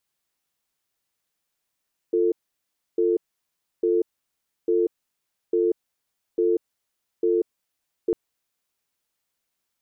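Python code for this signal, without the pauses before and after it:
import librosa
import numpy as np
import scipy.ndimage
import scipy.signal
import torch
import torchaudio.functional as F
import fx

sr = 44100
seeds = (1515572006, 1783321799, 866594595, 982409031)

y = fx.cadence(sr, length_s=6.0, low_hz=349.0, high_hz=445.0, on_s=0.19, off_s=0.66, level_db=-20.5)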